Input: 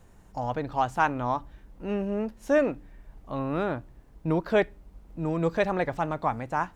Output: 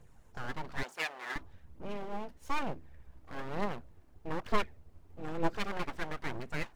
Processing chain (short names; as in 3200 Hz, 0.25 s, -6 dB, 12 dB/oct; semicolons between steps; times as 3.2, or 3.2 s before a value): phaser 1.1 Hz, delay 3.4 ms, feedback 54%; full-wave rectifier; 0.83–1.36 HPF 590 Hz 12 dB/oct; gain -7.5 dB